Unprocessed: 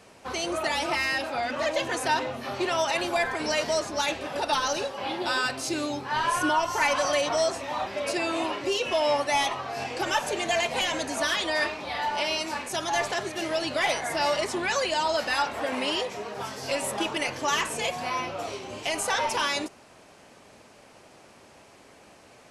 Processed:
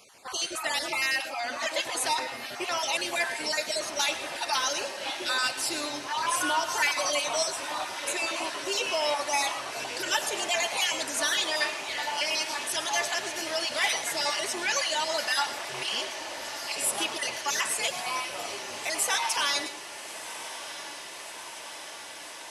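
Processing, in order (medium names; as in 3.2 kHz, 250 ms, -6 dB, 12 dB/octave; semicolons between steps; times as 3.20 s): random holes in the spectrogram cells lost 25%; 15.54–16.78 s: ring modulator 120 Hz; tilt EQ +3 dB/octave; echo that smears into a reverb 1304 ms, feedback 78%, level -13 dB; on a send at -12 dB: reverberation RT60 0.20 s, pre-delay 98 ms; on the sum: trim -3 dB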